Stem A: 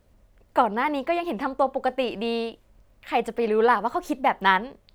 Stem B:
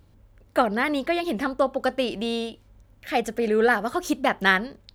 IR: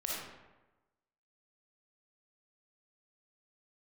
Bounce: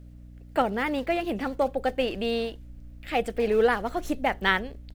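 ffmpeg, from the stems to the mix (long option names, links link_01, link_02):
-filter_complex "[0:a]equalizer=frequency=1000:width=2.6:gain=-12.5,aeval=exprs='val(0)+0.00316*(sin(2*PI*60*n/s)+sin(2*PI*2*60*n/s)/2+sin(2*PI*3*60*n/s)/3+sin(2*PI*4*60*n/s)/4+sin(2*PI*5*60*n/s)/5)':channel_layout=same,volume=0.5dB[link_01];[1:a]acompressor=threshold=-25dB:ratio=6,acrusher=samples=20:mix=1:aa=0.000001:lfo=1:lforange=32:lforate=2.1,adelay=15,volume=-17.5dB[link_02];[link_01][link_02]amix=inputs=2:normalize=0,asubboost=boost=5:cutoff=55,aeval=exprs='val(0)+0.00251*(sin(2*PI*60*n/s)+sin(2*PI*2*60*n/s)/2+sin(2*PI*3*60*n/s)/3+sin(2*PI*4*60*n/s)/4+sin(2*PI*5*60*n/s)/5)':channel_layout=same"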